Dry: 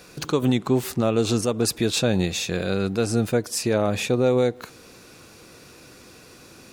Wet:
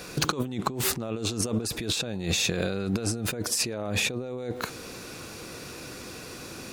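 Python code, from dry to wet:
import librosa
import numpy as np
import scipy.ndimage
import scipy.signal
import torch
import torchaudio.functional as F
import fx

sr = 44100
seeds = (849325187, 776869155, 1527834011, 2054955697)

y = fx.over_compress(x, sr, threshold_db=-30.0, ratio=-1.0)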